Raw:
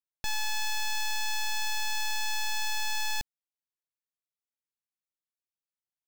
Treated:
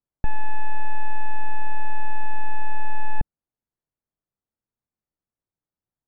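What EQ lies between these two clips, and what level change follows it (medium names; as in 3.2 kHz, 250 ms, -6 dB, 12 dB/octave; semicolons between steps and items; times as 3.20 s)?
Gaussian low-pass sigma 5.3 samples; bass shelf 320 Hz +11 dB; +6.5 dB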